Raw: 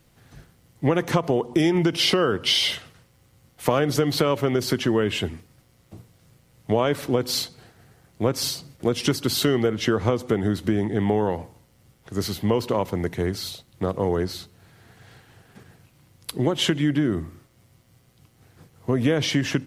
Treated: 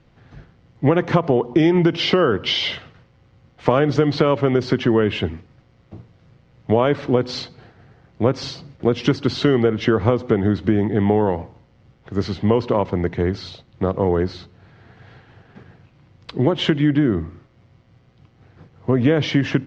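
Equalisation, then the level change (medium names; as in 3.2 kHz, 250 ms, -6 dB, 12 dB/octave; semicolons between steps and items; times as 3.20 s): low-pass 7 kHz 24 dB/octave; distance through air 120 m; treble shelf 4.7 kHz -9 dB; +5.0 dB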